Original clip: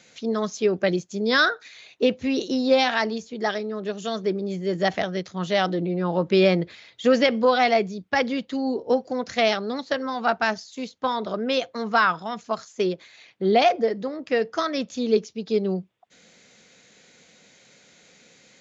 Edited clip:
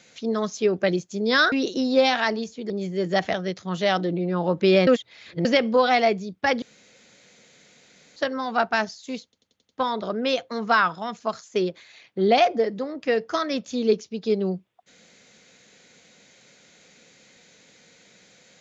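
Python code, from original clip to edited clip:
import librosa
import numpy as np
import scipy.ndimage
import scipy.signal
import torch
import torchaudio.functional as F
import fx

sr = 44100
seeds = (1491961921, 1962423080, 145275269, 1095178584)

y = fx.edit(x, sr, fx.cut(start_s=1.52, length_s=0.74),
    fx.cut(start_s=3.44, length_s=0.95),
    fx.reverse_span(start_s=6.56, length_s=0.58),
    fx.room_tone_fill(start_s=8.31, length_s=1.54),
    fx.stutter(start_s=10.93, slice_s=0.09, count=6), tone=tone)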